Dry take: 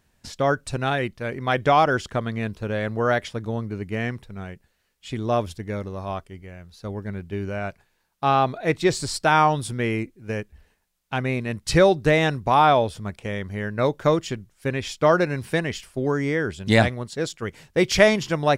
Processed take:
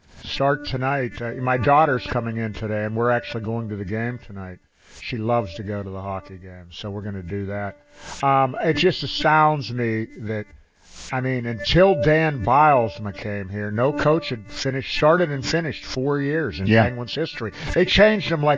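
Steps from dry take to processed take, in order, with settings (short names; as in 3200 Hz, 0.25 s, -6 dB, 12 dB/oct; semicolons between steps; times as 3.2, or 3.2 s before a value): nonlinear frequency compression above 1500 Hz 1.5:1; de-hum 292.2 Hz, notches 9; backwards sustainer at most 100 dB/s; gain +1.5 dB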